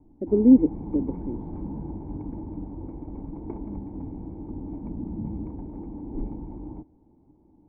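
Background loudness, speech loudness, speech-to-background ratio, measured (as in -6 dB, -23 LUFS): -36.5 LUFS, -21.0 LUFS, 15.5 dB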